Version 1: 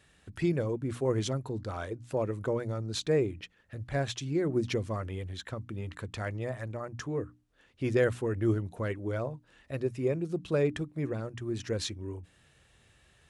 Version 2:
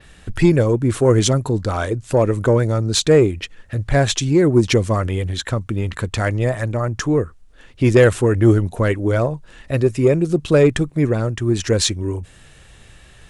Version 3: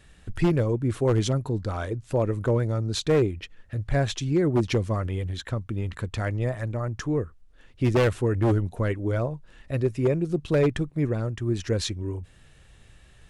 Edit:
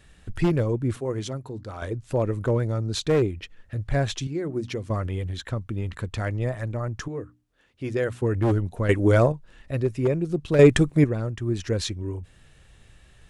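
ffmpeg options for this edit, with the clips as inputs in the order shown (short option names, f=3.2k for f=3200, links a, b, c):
-filter_complex "[0:a]asplit=3[a][b][c];[1:a]asplit=2[d][e];[2:a]asplit=6[f][g][h][i][j][k];[f]atrim=end=0.962[l];[a]atrim=start=0.958:end=1.822[m];[g]atrim=start=1.818:end=4.272[n];[b]atrim=start=4.268:end=4.902[o];[h]atrim=start=4.898:end=7.082[p];[c]atrim=start=7.078:end=8.222[q];[i]atrim=start=8.218:end=8.892[r];[d]atrim=start=8.888:end=9.322[s];[j]atrim=start=9.318:end=10.592[t];[e]atrim=start=10.588:end=11.042[u];[k]atrim=start=11.038[v];[l][m]acrossfade=d=0.004:c1=hsin:c2=hsin[w];[w][n]acrossfade=d=0.004:c1=hsin:c2=hsin[x];[x][o]acrossfade=d=0.004:c1=hsin:c2=hsin[y];[y][p]acrossfade=d=0.004:c1=hsin:c2=hsin[z];[z][q]acrossfade=d=0.004:c1=hsin:c2=hsin[aa];[aa][r]acrossfade=d=0.004:c1=hsin:c2=hsin[ab];[ab][s]acrossfade=d=0.004:c1=hsin:c2=hsin[ac];[ac][t]acrossfade=d=0.004:c1=hsin:c2=hsin[ad];[ad][u]acrossfade=d=0.004:c1=hsin:c2=hsin[ae];[ae][v]acrossfade=d=0.004:c1=hsin:c2=hsin"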